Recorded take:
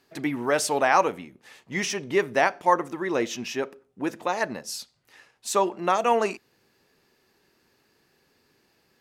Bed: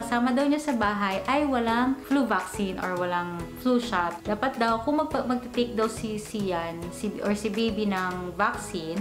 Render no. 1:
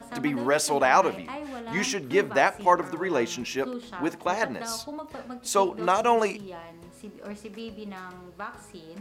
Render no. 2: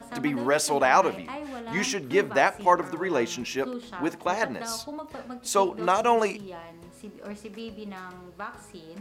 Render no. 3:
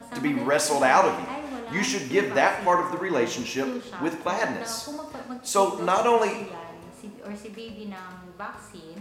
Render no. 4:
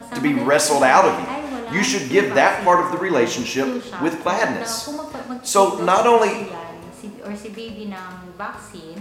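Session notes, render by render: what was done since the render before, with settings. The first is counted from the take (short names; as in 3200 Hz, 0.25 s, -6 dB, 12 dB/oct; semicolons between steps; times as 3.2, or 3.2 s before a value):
add bed -12.5 dB
nothing audible
two-slope reverb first 0.66 s, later 2.6 s, from -18 dB, DRR 4 dB
gain +6.5 dB; limiter -1 dBFS, peak gain reduction 2 dB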